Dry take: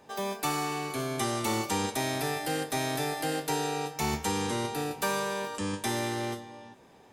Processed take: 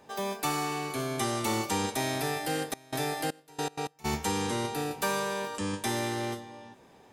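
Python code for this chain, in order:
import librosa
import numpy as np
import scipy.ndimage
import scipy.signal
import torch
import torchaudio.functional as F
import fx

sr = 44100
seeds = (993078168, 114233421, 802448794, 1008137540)

y = fx.step_gate(x, sr, bpm=159, pattern='..x.x..xxxx.', floor_db=-24.0, edge_ms=4.5, at=(2.7, 4.04), fade=0.02)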